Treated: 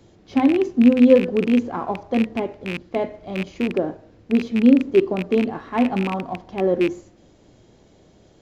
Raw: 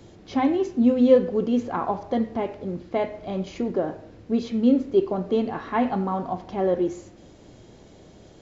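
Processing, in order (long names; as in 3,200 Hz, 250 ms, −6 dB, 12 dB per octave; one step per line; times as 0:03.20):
loose part that buzzes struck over −30 dBFS, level −16 dBFS
dynamic equaliser 270 Hz, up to +7 dB, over −31 dBFS, Q 0.78
in parallel at −8.5 dB: slack as between gear wheels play −31 dBFS
on the sum: level −4 dB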